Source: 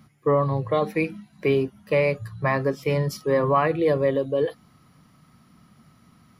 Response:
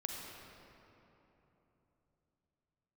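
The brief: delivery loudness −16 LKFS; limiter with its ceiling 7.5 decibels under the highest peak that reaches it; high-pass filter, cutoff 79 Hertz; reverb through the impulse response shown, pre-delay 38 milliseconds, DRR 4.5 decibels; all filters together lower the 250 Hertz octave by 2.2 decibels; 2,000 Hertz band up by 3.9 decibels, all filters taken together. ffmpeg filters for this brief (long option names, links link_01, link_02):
-filter_complex "[0:a]highpass=79,equalizer=frequency=250:width_type=o:gain=-3,equalizer=frequency=2000:width_type=o:gain=4.5,alimiter=limit=-16dB:level=0:latency=1,asplit=2[link_01][link_02];[1:a]atrim=start_sample=2205,adelay=38[link_03];[link_02][link_03]afir=irnorm=-1:irlink=0,volume=-5dB[link_04];[link_01][link_04]amix=inputs=2:normalize=0,volume=10dB"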